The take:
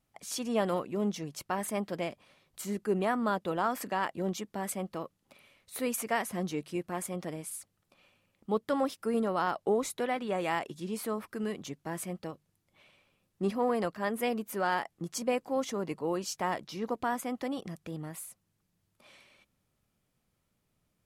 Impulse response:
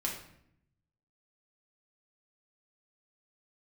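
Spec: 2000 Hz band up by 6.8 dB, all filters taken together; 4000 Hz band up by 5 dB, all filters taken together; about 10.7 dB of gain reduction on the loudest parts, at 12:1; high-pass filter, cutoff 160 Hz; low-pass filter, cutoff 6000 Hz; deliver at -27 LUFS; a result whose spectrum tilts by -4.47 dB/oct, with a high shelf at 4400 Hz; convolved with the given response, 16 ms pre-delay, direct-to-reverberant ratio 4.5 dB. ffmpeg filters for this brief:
-filter_complex "[0:a]highpass=160,lowpass=6k,equalizer=f=2k:t=o:g=8,equalizer=f=4k:t=o:g=8.5,highshelf=f=4.4k:g=-7.5,acompressor=threshold=-33dB:ratio=12,asplit=2[a][b];[1:a]atrim=start_sample=2205,adelay=16[c];[b][c]afir=irnorm=-1:irlink=0,volume=-8dB[d];[a][d]amix=inputs=2:normalize=0,volume=11dB"

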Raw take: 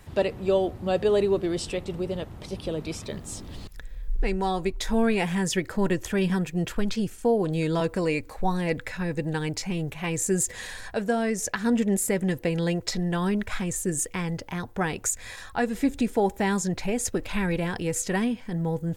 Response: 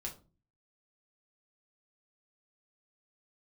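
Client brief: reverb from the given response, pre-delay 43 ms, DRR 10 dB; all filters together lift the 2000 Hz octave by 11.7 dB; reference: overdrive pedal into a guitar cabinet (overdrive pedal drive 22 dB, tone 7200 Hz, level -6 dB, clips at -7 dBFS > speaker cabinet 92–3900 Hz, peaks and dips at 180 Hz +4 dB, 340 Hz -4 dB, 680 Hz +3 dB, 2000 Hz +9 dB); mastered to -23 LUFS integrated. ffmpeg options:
-filter_complex "[0:a]equalizer=f=2k:t=o:g=7.5,asplit=2[a][b];[1:a]atrim=start_sample=2205,adelay=43[c];[b][c]afir=irnorm=-1:irlink=0,volume=-8.5dB[d];[a][d]amix=inputs=2:normalize=0,asplit=2[e][f];[f]highpass=f=720:p=1,volume=22dB,asoftclip=type=tanh:threshold=-7dB[g];[e][g]amix=inputs=2:normalize=0,lowpass=f=7.2k:p=1,volume=-6dB,highpass=92,equalizer=f=180:t=q:w=4:g=4,equalizer=f=340:t=q:w=4:g=-4,equalizer=f=680:t=q:w=4:g=3,equalizer=f=2k:t=q:w=4:g=9,lowpass=f=3.9k:w=0.5412,lowpass=f=3.9k:w=1.3066,volume=-8.5dB"

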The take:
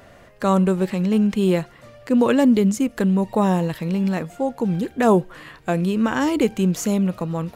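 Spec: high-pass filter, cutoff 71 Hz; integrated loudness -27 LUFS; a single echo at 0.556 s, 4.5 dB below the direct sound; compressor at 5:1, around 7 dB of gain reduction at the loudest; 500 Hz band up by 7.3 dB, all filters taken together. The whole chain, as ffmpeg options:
-af "highpass=71,equalizer=f=500:t=o:g=9,acompressor=threshold=-14dB:ratio=5,aecho=1:1:556:0.596,volume=-8dB"

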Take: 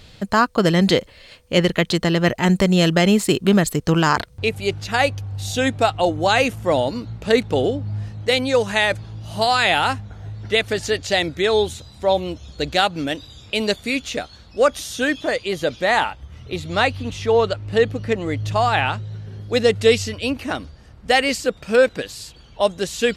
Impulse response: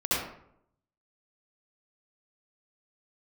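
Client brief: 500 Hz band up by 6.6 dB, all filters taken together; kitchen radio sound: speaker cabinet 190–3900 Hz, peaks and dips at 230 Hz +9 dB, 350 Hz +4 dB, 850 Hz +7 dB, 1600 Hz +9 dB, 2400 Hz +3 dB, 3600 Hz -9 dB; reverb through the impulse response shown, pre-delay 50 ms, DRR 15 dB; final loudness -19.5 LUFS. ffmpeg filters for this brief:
-filter_complex "[0:a]equalizer=f=500:t=o:g=6,asplit=2[a][b];[1:a]atrim=start_sample=2205,adelay=50[c];[b][c]afir=irnorm=-1:irlink=0,volume=-26dB[d];[a][d]amix=inputs=2:normalize=0,highpass=190,equalizer=f=230:t=q:w=4:g=9,equalizer=f=350:t=q:w=4:g=4,equalizer=f=850:t=q:w=4:g=7,equalizer=f=1.6k:t=q:w=4:g=9,equalizer=f=2.4k:t=q:w=4:g=3,equalizer=f=3.6k:t=q:w=4:g=-9,lowpass=f=3.9k:w=0.5412,lowpass=f=3.9k:w=1.3066,volume=-5dB"

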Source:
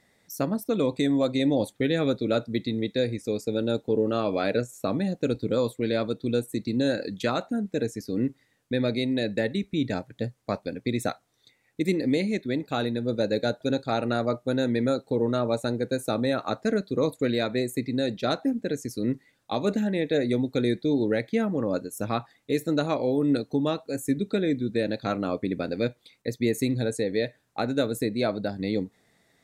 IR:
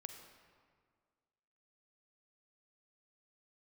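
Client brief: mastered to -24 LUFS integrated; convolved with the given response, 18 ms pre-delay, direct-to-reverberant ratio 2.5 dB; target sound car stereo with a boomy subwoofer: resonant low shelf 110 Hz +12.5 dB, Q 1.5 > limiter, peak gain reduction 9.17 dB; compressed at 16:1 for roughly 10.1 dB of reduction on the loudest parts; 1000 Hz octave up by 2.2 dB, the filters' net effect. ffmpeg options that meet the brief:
-filter_complex "[0:a]equalizer=f=1k:t=o:g=3.5,acompressor=threshold=-29dB:ratio=16,asplit=2[a][b];[1:a]atrim=start_sample=2205,adelay=18[c];[b][c]afir=irnorm=-1:irlink=0,volume=2dB[d];[a][d]amix=inputs=2:normalize=0,lowshelf=f=110:t=q:w=1.5:g=12.5,volume=11dB,alimiter=limit=-13dB:level=0:latency=1"

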